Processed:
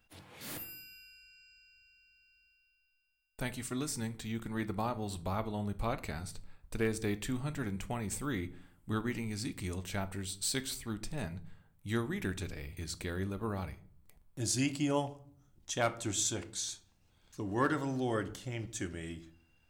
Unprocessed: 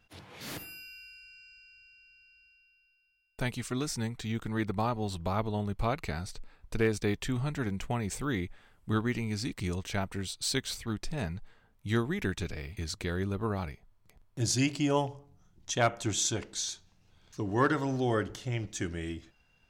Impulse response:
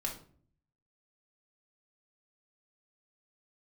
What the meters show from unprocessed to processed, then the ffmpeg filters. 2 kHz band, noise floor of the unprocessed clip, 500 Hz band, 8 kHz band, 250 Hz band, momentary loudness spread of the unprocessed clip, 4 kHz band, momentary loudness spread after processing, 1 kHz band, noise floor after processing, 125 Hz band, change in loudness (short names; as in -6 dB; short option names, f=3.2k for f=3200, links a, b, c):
-4.5 dB, -67 dBFS, -4.5 dB, -1.5 dB, -3.5 dB, 16 LU, -4.5 dB, 15 LU, -4.5 dB, -71 dBFS, -5.5 dB, -4.0 dB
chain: -filter_complex "[0:a]aexciter=amount=1.8:drive=6.9:freq=7.8k,asplit=2[a][b];[1:a]atrim=start_sample=2205[c];[b][c]afir=irnorm=-1:irlink=0,volume=-8dB[d];[a][d]amix=inputs=2:normalize=0,volume=-7dB"